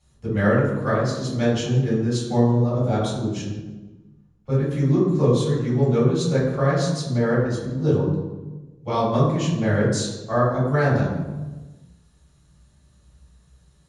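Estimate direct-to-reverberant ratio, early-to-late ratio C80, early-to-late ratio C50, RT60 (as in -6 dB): -8.0 dB, 4.5 dB, 1.5 dB, 1.2 s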